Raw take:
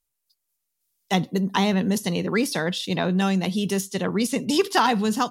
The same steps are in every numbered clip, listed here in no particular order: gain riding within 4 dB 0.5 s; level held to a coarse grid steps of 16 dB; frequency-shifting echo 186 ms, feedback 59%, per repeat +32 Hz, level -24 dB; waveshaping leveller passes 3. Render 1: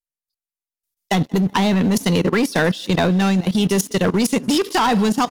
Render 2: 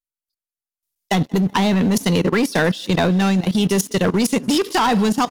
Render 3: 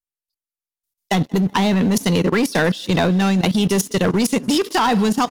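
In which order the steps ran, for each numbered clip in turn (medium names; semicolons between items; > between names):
waveshaping leveller > frequency-shifting echo > gain riding > level held to a coarse grid; waveshaping leveller > gain riding > frequency-shifting echo > level held to a coarse grid; gain riding > waveshaping leveller > frequency-shifting echo > level held to a coarse grid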